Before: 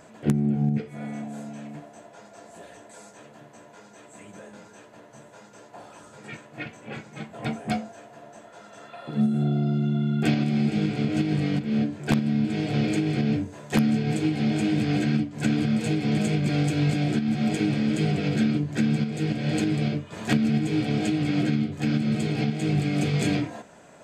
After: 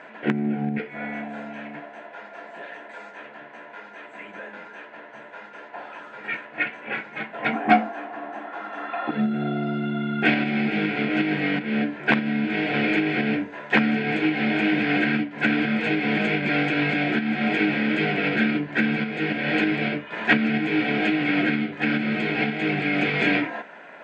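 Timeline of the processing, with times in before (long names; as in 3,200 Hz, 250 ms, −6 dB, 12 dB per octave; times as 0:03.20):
0:07.53–0:09.11: hollow resonant body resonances 290/780/1,100 Hz, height 13 dB, ringing for 30 ms
whole clip: Chebyshev band-pass filter 240–2,600 Hz, order 2; parametric band 1,700 Hz +14.5 dB 2.5 octaves; notch filter 1,200 Hz, Q 6.7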